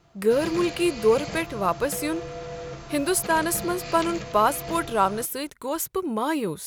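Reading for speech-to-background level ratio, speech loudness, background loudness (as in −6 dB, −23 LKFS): 11.0 dB, −25.0 LKFS, −36.0 LKFS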